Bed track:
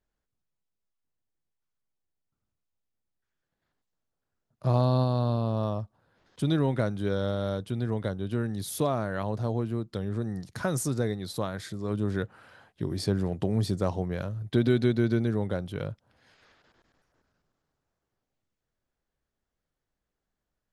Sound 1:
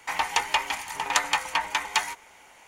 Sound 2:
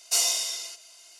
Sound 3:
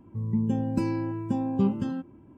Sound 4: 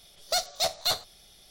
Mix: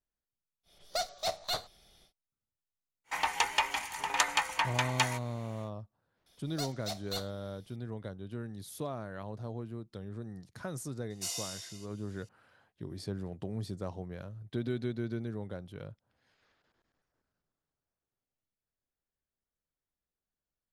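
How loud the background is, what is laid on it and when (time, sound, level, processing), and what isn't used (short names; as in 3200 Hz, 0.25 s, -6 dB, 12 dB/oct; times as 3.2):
bed track -11 dB
0.63 add 4 -3.5 dB, fades 0.10 s + high shelf 3300 Hz -8 dB
3.04 add 1 -4.5 dB, fades 0.10 s
6.26 add 4 -12.5 dB
11.1 add 2 -14 dB
not used: 3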